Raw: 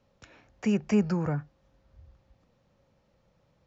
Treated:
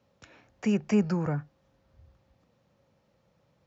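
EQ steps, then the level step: HPF 77 Hz; 0.0 dB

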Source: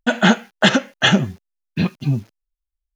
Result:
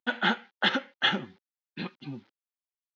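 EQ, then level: speaker cabinet 420–3700 Hz, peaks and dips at 440 Hz -7 dB, 650 Hz -9 dB, 1100 Hz -6 dB, 1700 Hz -4 dB, 2600 Hz -8 dB; bell 640 Hz -6.5 dB 0.22 oct; -4.5 dB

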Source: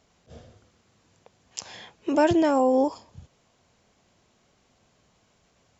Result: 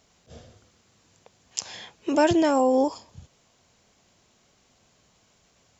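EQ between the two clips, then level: high shelf 3300 Hz +7 dB; 0.0 dB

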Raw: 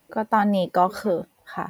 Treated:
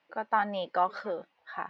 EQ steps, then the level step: band-pass 2800 Hz, Q 0.55; air absorption 250 m; 0.0 dB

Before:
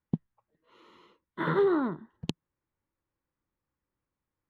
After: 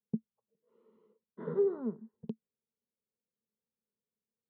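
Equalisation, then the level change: double band-pass 310 Hz, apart 0.96 oct; +1.5 dB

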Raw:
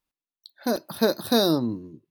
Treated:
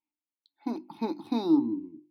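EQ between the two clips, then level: vowel filter u; notches 50/100/150/200/250/300/350 Hz; +6.0 dB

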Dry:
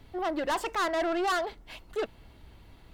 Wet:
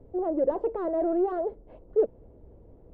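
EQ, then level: synth low-pass 500 Hz, resonance Q 3.7; 0.0 dB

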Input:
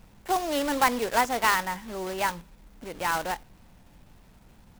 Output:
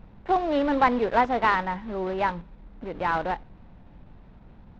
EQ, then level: air absorption 85 m; tape spacing loss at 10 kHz 34 dB; bell 3800 Hz +4 dB 0.28 oct; +6.0 dB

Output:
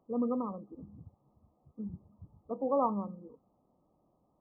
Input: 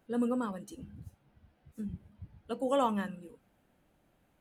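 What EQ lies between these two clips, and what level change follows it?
brick-wall FIR low-pass 1300 Hz; low shelf 80 Hz -10.5 dB; 0.0 dB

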